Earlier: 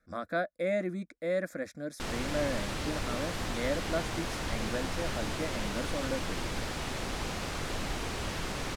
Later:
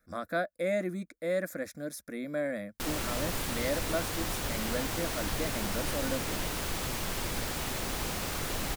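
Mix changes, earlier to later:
background: entry +0.80 s; master: remove distance through air 58 m

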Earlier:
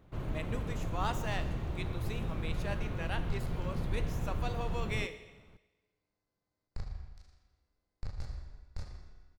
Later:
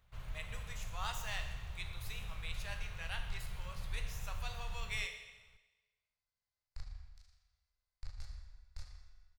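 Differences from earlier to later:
speech: send +7.0 dB; master: add amplifier tone stack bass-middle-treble 10-0-10

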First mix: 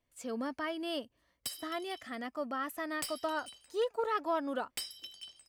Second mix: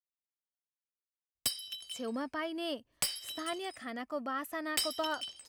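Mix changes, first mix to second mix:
speech: entry +1.75 s; background +7.0 dB

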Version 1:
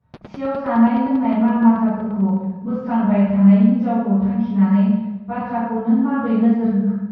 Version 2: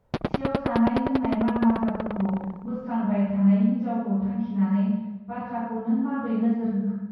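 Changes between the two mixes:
speech -8.0 dB; background +11.5 dB

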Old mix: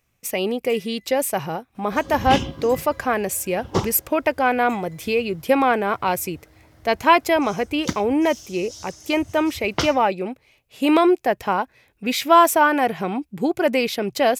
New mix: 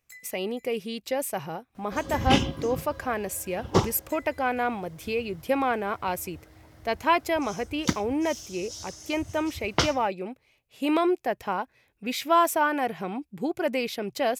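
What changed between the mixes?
speech -7.5 dB; first sound: entry -0.60 s

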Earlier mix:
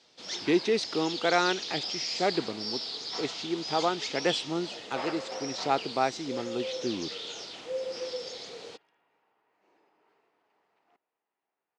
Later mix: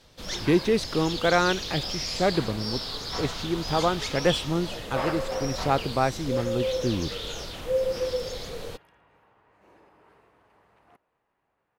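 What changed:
first sound +3.0 dB; second sound +8.0 dB; master: remove cabinet simulation 320–7400 Hz, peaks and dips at 550 Hz -6 dB, 1.1 kHz -5 dB, 1.6 kHz -4 dB, 4.9 kHz +3 dB

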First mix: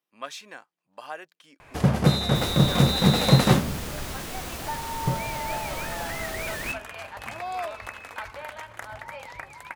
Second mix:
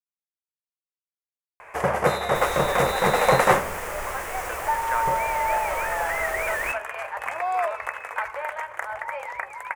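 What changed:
speech: entry +2.20 s; first sound: add bass shelf 71 Hz -11.5 dB; master: add graphic EQ 125/250/500/1000/2000/4000/8000 Hz -8/-12/+8/+7/+9/-12/+3 dB

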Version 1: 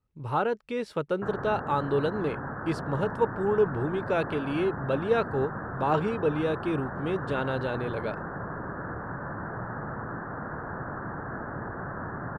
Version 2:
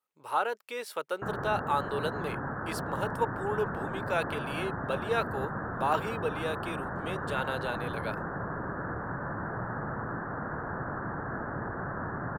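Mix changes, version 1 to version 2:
speech: add high-pass 650 Hz 12 dB/octave; master: remove distance through air 80 m

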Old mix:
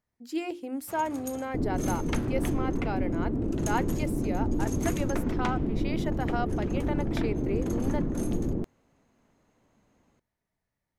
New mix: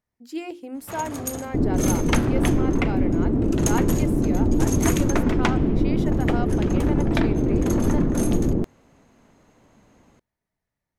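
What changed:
first sound +11.0 dB; second sound +8.0 dB

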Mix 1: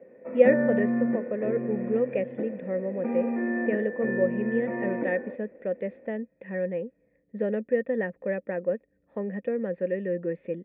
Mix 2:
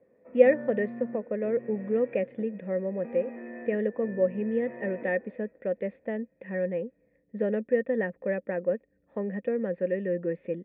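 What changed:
first sound -11.5 dB; reverb: off

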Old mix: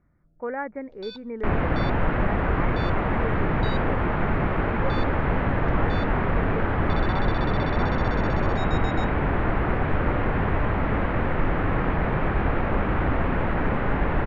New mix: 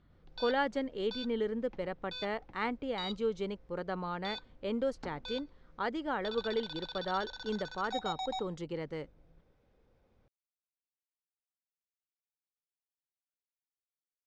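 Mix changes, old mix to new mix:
speech: remove steep low-pass 2.4 kHz 96 dB/octave; first sound: entry -0.65 s; second sound: muted

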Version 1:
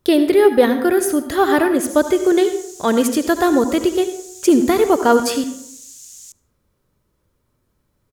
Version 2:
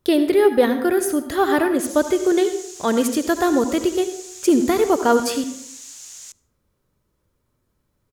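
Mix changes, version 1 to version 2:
speech -3.0 dB; background: remove differentiator

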